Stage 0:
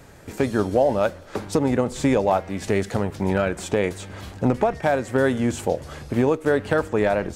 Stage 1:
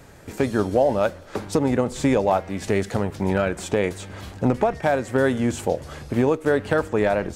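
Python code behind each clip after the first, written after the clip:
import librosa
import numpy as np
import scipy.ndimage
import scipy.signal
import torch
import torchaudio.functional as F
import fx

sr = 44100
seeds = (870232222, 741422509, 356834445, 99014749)

y = x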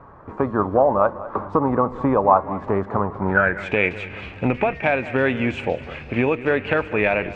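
y = fx.filter_sweep_lowpass(x, sr, from_hz=1100.0, to_hz=2500.0, start_s=3.15, end_s=3.74, q=7.1)
y = fx.echo_feedback(y, sr, ms=199, feedback_pct=48, wet_db=-16.5)
y = y * librosa.db_to_amplitude(-1.0)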